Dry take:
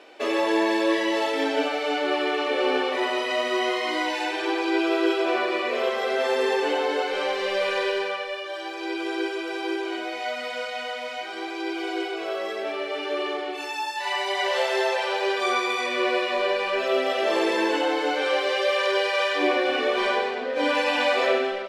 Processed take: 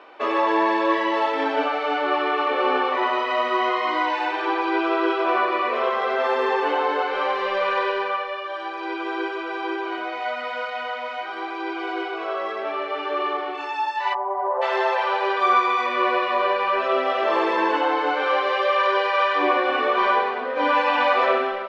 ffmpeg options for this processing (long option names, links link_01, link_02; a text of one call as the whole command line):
ffmpeg -i in.wav -filter_complex "[0:a]asplit=3[link_01][link_02][link_03];[link_01]afade=type=out:start_time=14.13:duration=0.02[link_04];[link_02]lowpass=frequency=1000:width=0.5412,lowpass=frequency=1000:width=1.3066,afade=type=in:start_time=14.13:duration=0.02,afade=type=out:start_time=14.61:duration=0.02[link_05];[link_03]afade=type=in:start_time=14.61:duration=0.02[link_06];[link_04][link_05][link_06]amix=inputs=3:normalize=0,lowpass=3600,equalizer=frequency=1100:width=1.7:gain=12.5,volume=-1.5dB" out.wav